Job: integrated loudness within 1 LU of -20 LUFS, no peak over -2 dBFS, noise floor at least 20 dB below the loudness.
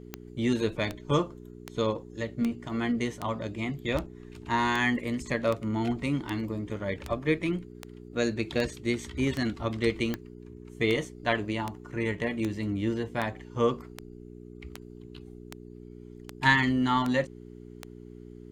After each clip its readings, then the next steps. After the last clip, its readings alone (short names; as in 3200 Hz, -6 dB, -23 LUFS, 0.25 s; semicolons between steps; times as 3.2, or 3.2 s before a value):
clicks 24; hum 60 Hz; harmonics up to 420 Hz; hum level -43 dBFS; loudness -29.5 LUFS; peak -8.0 dBFS; loudness target -20.0 LUFS
-> de-click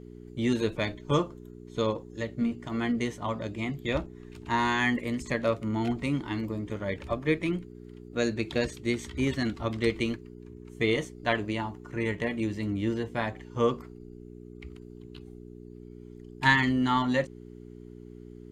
clicks 0; hum 60 Hz; harmonics up to 420 Hz; hum level -43 dBFS
-> de-hum 60 Hz, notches 7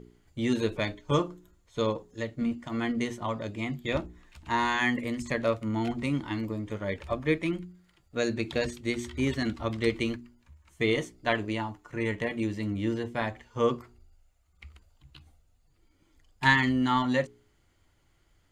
hum none; loudness -30.0 LUFS; peak -7.5 dBFS; loudness target -20.0 LUFS
-> gain +10 dB; limiter -2 dBFS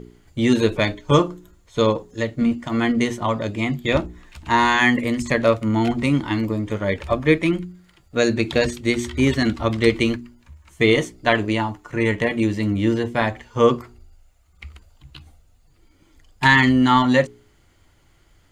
loudness -20.0 LUFS; peak -2.0 dBFS; noise floor -57 dBFS